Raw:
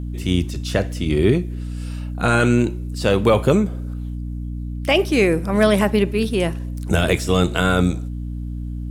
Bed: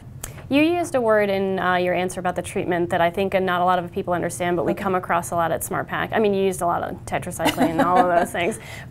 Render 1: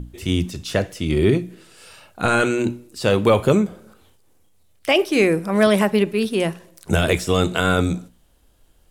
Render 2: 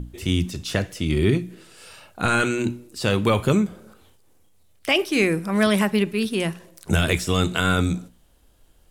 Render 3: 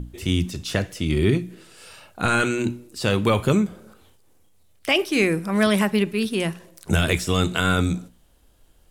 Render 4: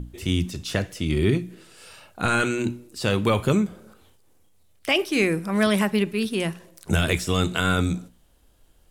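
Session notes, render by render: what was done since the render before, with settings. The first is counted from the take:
notches 60/120/180/240/300 Hz
dynamic EQ 560 Hz, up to -7 dB, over -31 dBFS, Q 0.92
nothing audible
gain -1.5 dB

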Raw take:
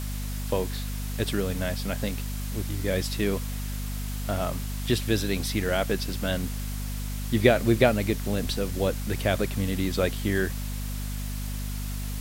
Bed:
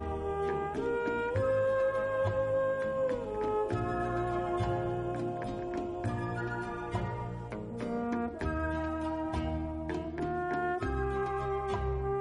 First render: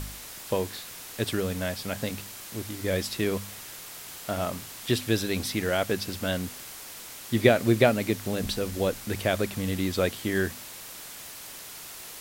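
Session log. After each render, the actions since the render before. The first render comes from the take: de-hum 50 Hz, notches 5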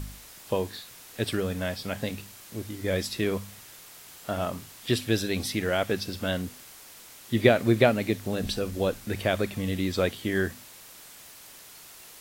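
noise print and reduce 6 dB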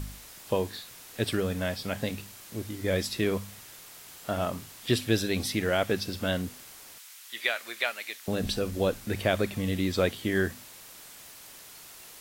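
5.21–5.76 short-mantissa float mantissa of 8-bit; 6.98–8.28 HPF 1400 Hz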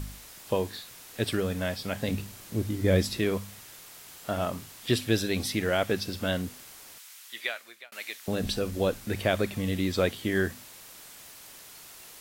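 2.08–3.19 low shelf 420 Hz +8.5 dB; 7.21–7.92 fade out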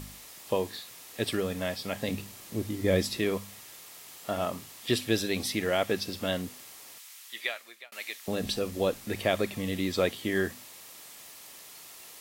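low shelf 110 Hz -11.5 dB; notch 1500 Hz, Q 10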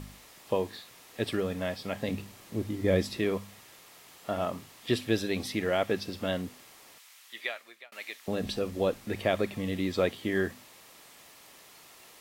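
high shelf 4000 Hz -9 dB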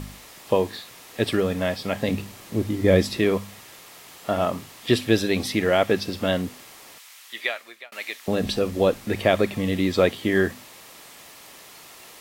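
gain +8 dB

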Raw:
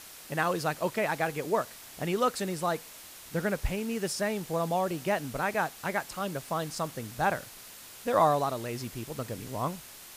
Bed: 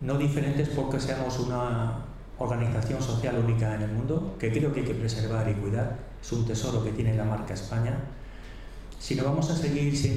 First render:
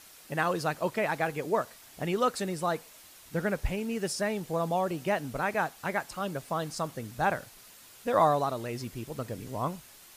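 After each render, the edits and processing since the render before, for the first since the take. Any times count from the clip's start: denoiser 6 dB, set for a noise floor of -48 dBFS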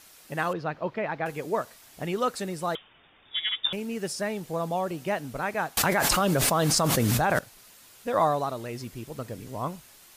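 0.53–1.26 air absorption 270 m; 2.75–3.73 inverted band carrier 3600 Hz; 5.77–7.39 fast leveller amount 100%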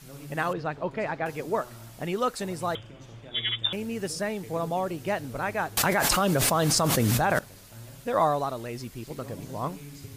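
add bed -18 dB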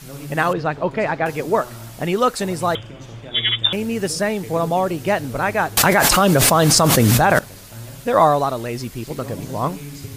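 gain +9.5 dB; limiter -1 dBFS, peak gain reduction 3 dB

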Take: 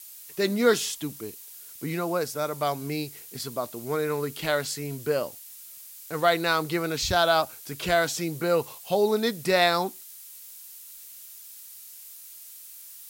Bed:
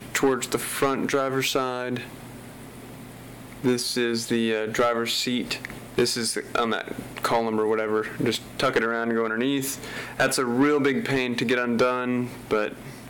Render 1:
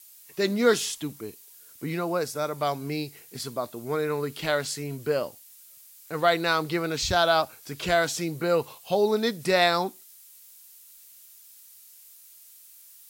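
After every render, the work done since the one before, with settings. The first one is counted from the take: noise print and reduce 6 dB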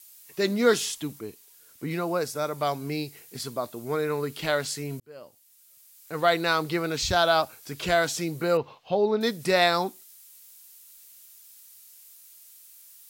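1.19–1.91 high shelf 4900 Hz -4.5 dB; 5–6.31 fade in; 8.57–9.21 air absorption 240 m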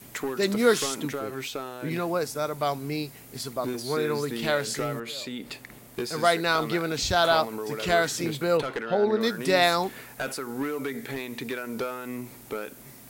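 add bed -10 dB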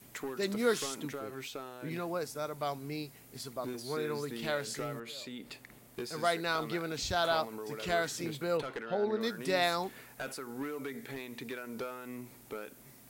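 gain -8.5 dB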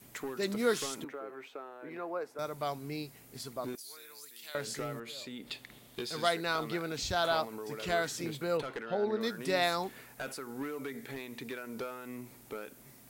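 1.04–2.39 three-band isolator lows -22 dB, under 290 Hz, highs -18 dB, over 2200 Hz; 3.75–4.55 differentiator; 5.47–6.29 bell 3500 Hz +11 dB 0.69 oct

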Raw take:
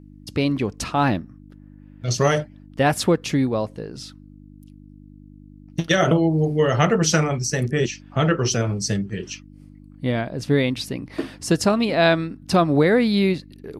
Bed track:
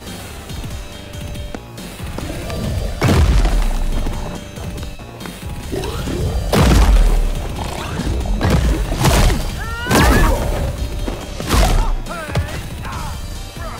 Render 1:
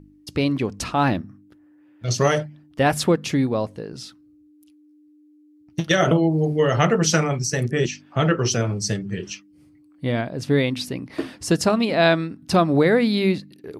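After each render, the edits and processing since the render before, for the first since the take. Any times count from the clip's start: de-hum 50 Hz, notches 5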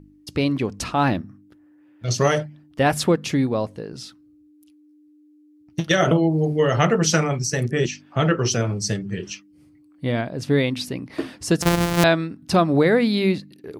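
11.62–12.04 sample sorter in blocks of 256 samples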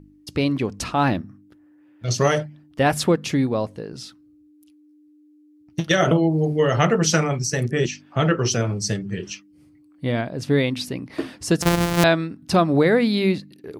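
nothing audible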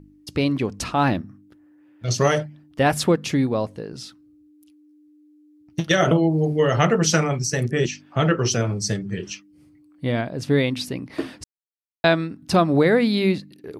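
8.73–9.17 notch 2800 Hz, Q 10; 11.44–12.04 mute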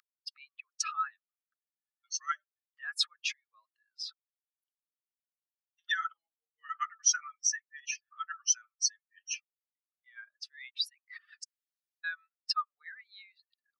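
spectral contrast raised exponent 2.4; rippled Chebyshev high-pass 1200 Hz, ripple 3 dB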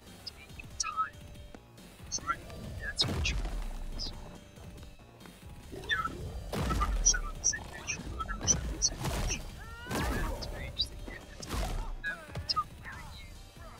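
add bed track -21.5 dB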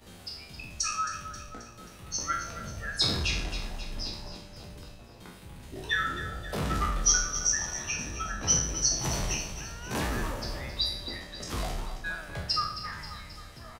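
spectral trails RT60 0.62 s; on a send: feedback echo 0.267 s, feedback 55%, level -11.5 dB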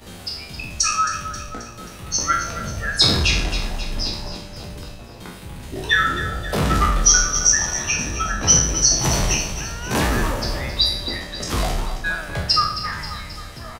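gain +11 dB; limiter -2 dBFS, peak gain reduction 2.5 dB

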